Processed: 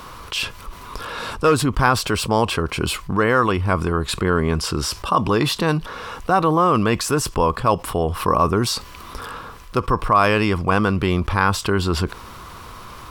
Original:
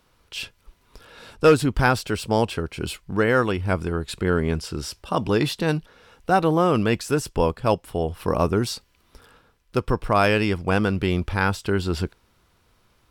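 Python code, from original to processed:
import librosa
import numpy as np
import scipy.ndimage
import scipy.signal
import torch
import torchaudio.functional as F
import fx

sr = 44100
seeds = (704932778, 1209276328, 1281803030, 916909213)

y = fx.peak_eq(x, sr, hz=1100.0, db=12.0, octaves=0.4)
y = fx.env_flatten(y, sr, amount_pct=50)
y = y * librosa.db_to_amplitude(-3.0)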